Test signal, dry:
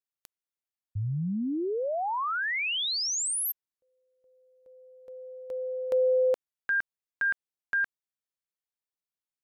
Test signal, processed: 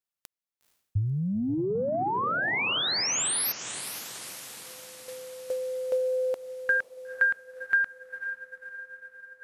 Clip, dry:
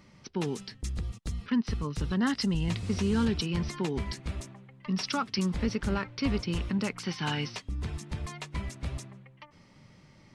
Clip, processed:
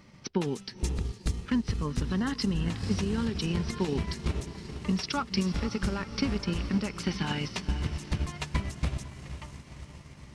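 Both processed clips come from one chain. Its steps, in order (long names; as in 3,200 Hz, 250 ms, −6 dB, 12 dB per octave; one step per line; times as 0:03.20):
brickwall limiter −24.5 dBFS
feedback delay with all-pass diffusion 486 ms, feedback 60%, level −10 dB
transient designer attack +6 dB, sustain −4 dB
level +1.5 dB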